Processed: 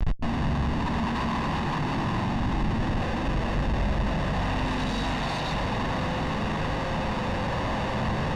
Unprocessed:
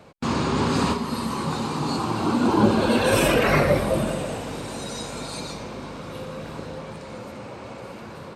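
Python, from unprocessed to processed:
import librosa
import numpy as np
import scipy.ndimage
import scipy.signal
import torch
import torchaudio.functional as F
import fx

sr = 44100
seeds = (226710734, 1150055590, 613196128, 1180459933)

y = fx.over_compress(x, sr, threshold_db=-32.0, ratio=-1.0)
y = fx.hum_notches(y, sr, base_hz=60, count=7)
y = fx.rev_spring(y, sr, rt60_s=1.3, pass_ms=(43,), chirp_ms=25, drr_db=2.5)
y = fx.schmitt(y, sr, flips_db=-36.5)
y = scipy.signal.sosfilt(scipy.signal.butter(2, 3700.0, 'lowpass', fs=sr, output='sos'), y)
y = fx.low_shelf(y, sr, hz=68.0, db=8.5)
y = y + 0.47 * np.pad(y, (int(1.1 * sr / 1000.0), 0))[:len(y)]
y = fx.echo_split(y, sr, split_hz=390.0, low_ms=187, high_ms=718, feedback_pct=52, wet_db=-12.5)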